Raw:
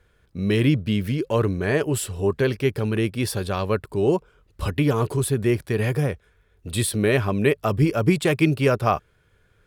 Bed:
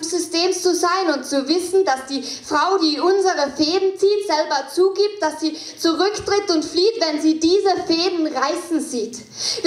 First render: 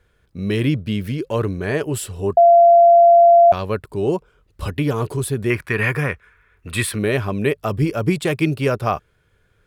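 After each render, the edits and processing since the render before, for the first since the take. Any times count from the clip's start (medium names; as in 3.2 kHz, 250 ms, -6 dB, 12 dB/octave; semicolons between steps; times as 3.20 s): 2.37–3.52 s: bleep 686 Hz -6.5 dBFS; 5.50–6.99 s: high-order bell 1.6 kHz +12 dB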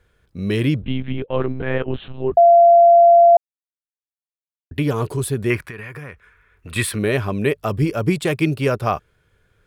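0.82–2.34 s: monotone LPC vocoder at 8 kHz 130 Hz; 3.37–4.71 s: mute; 5.62–6.76 s: compression 10:1, threshold -30 dBFS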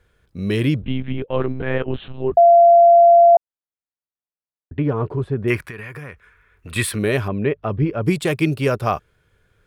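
0.85–1.27 s: peaking EQ 6.6 kHz -9 dB 0.92 oct; 3.35–5.48 s: low-pass 1.5 kHz; 7.28–8.05 s: distance through air 410 m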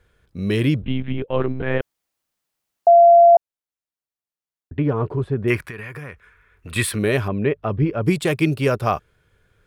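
1.81–2.87 s: room tone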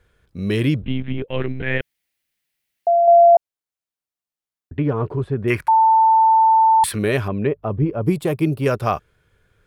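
1.28–3.08 s: FFT filter 150 Hz 0 dB, 1.2 kHz -7 dB, 2 kHz +8 dB, 7 kHz -1 dB, 11 kHz +3 dB; 5.68–6.84 s: bleep 890 Hz -10 dBFS; 7.47–8.66 s: high-order bell 3.5 kHz -8.5 dB 2.9 oct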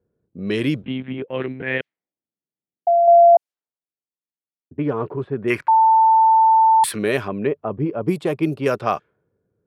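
level-controlled noise filter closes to 350 Hz, open at -14.5 dBFS; high-pass 190 Hz 12 dB/octave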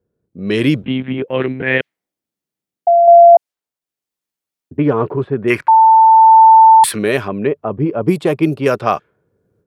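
level rider gain up to 11 dB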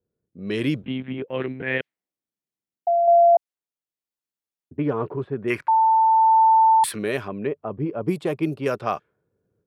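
trim -9.5 dB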